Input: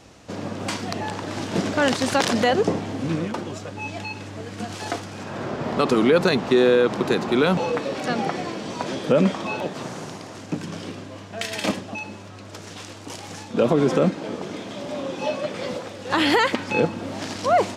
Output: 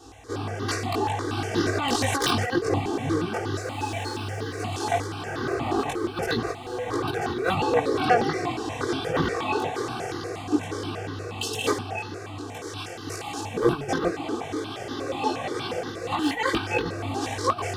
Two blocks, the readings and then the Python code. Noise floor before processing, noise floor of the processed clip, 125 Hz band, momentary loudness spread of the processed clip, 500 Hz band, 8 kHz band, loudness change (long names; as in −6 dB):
−40 dBFS, −37 dBFS, −1.0 dB, 10 LU, −5.0 dB, 0.0 dB, −4.0 dB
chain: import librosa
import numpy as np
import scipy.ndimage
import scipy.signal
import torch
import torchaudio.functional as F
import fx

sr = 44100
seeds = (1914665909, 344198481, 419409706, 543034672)

y = np.minimum(x, 2.0 * 10.0 ** (-12.5 / 20.0) - x)
y = scipy.signal.sosfilt(scipy.signal.butter(2, 61.0, 'highpass', fs=sr, output='sos'), y)
y = fx.spec_erase(y, sr, start_s=11.14, length_s=0.52, low_hz=560.0, high_hz=2600.0)
y = fx.low_shelf(y, sr, hz=320.0, db=2.0)
y = y + 0.88 * np.pad(y, (int(2.6 * sr / 1000.0), 0))[:len(y)]
y = fx.over_compress(y, sr, threshold_db=-19.0, ratio=-0.5)
y = fx.chorus_voices(y, sr, voices=4, hz=1.4, base_ms=20, depth_ms=3.0, mix_pct=50)
y = fx.echo_diffused(y, sr, ms=1867, feedback_pct=48, wet_db=-12)
y = fx.phaser_held(y, sr, hz=8.4, low_hz=580.0, high_hz=2400.0)
y = F.gain(torch.from_numpy(y), 2.5).numpy()